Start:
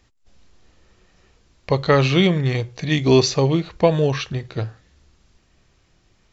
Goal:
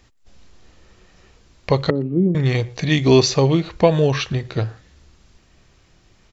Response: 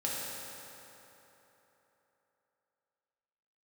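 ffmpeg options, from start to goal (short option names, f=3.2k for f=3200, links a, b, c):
-filter_complex "[0:a]asplit=2[a][b];[b]acompressor=threshold=-25dB:ratio=6,volume=-2dB[c];[a][c]amix=inputs=2:normalize=0,asettb=1/sr,asplit=3[d][e][f];[d]atrim=end=1.904[g];[e]atrim=start=1.9:end=2.35,asetpts=PTS-STARTPTS,afade=t=in:d=0.004:c=qsin,afade=t=out:st=0.446:d=0.004:c=qsin,asuperpass=centerf=250:order=4:qfactor=1.3[h];[f]atrim=start=2.346[i];[g][h]acrossfade=d=0.004:c1=hsin:c2=qsin[j];[j][i]acrossfade=d=0.004:c1=qsin:c2=hsin,asplit=2[k][l];[l]adelay=120,highpass=300,lowpass=3.4k,asoftclip=type=hard:threshold=-11.5dB,volume=-25dB[m];[k][m]amix=inputs=2:normalize=0"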